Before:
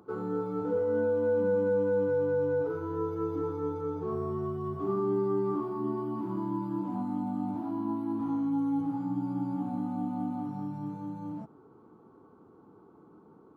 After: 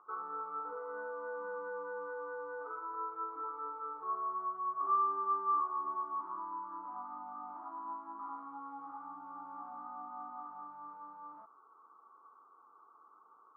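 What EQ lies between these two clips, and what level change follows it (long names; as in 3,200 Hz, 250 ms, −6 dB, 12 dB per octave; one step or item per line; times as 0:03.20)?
high-pass filter 890 Hz 12 dB per octave
low-pass with resonance 1,200 Hz, resonance Q 9.1
−7.0 dB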